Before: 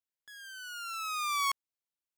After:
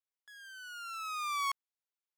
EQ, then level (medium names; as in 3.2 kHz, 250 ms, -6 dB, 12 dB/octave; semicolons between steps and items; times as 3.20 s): high-pass 1 kHz; tilt EQ -4 dB/octave; treble shelf 5.5 kHz +7.5 dB; 0.0 dB